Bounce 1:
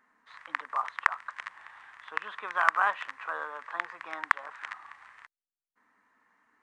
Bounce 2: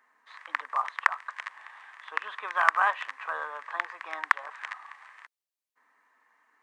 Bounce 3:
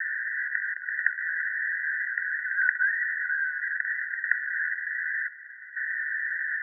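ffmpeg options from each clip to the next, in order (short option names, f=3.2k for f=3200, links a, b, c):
-af "highpass=460,bandreject=f=1.4k:w=12,volume=2.5dB"
-af "aeval=exprs='val(0)+0.5*0.106*sgn(val(0))':c=same,asuperpass=centerf=1700:order=20:qfactor=3.1"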